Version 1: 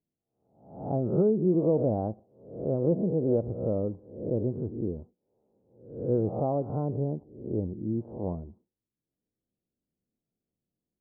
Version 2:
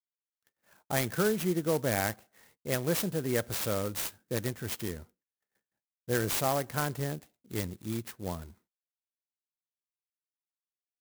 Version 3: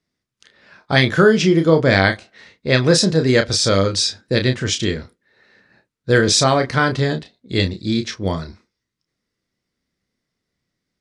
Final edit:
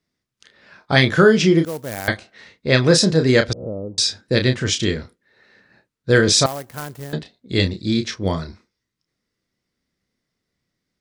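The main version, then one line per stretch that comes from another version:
3
1.65–2.08 from 2
3.53–3.98 from 1
6.46–7.13 from 2

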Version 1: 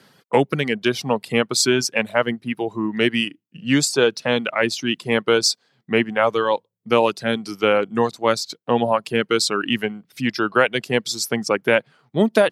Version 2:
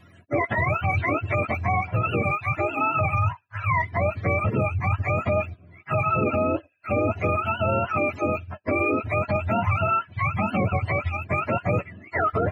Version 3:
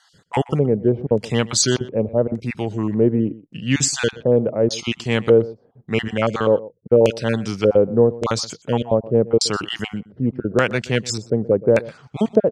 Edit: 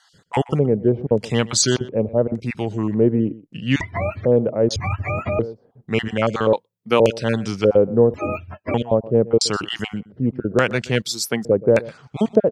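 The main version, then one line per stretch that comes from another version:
3
3.81–4.25 from 2
4.76–5.39 from 2
6.53–7 from 1
8.14–8.74 from 2
11.02–11.45 from 1

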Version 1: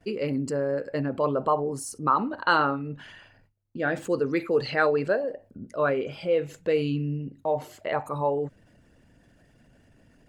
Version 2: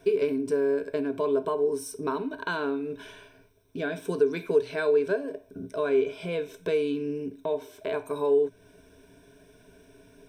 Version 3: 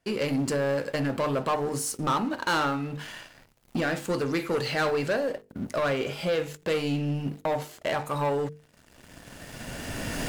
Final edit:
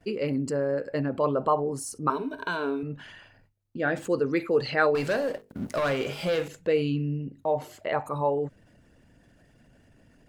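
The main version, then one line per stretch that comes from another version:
1
2.1–2.83 from 2
4.95–6.48 from 3

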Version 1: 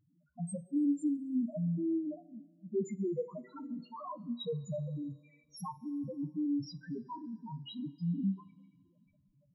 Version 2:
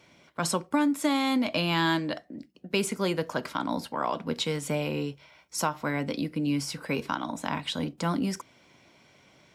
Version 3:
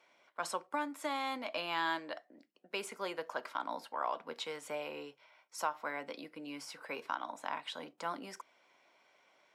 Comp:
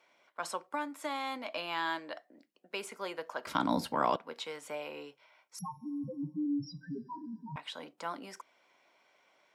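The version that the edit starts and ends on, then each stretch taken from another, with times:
3
3.47–4.16 from 2
5.59–7.56 from 1

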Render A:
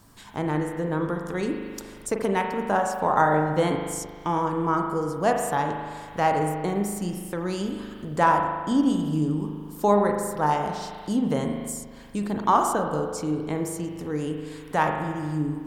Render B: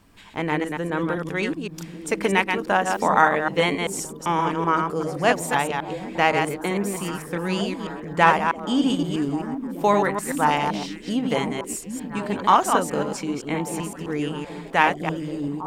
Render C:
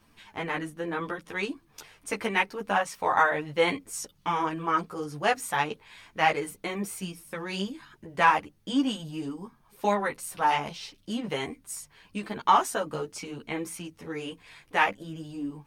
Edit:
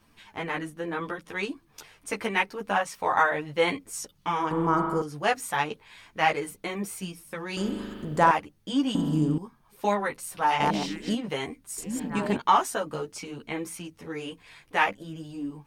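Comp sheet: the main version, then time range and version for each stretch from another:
C
4.51–5.02 from A
7.57–8.31 from A
8.95–9.38 from A
10.6–11.15 from B
11.78–12.37 from B

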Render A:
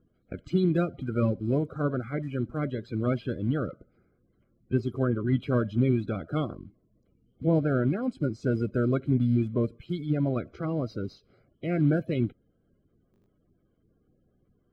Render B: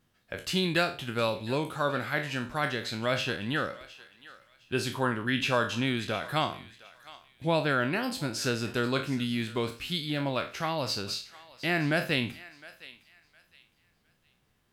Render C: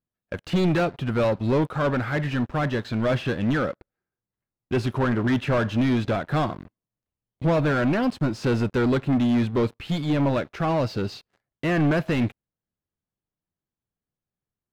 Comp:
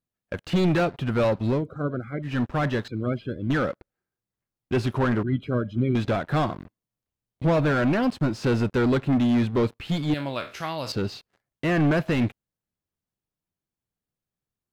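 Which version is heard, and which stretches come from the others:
C
1.55–2.3 from A, crossfade 0.16 s
2.88–3.5 from A
5.23–5.95 from A
10.14–10.92 from B

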